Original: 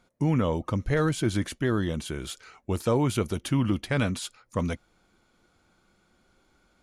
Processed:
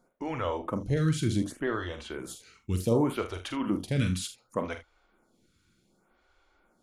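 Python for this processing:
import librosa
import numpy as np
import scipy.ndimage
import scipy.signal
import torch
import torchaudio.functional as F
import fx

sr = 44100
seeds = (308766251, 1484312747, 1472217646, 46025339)

y = fx.high_shelf(x, sr, hz=11000.0, db=-8.5, at=(0.86, 2.19))
y = fx.room_early_taps(y, sr, ms=(44, 77), db=(-8.5, -14.5))
y = fx.stagger_phaser(y, sr, hz=0.67)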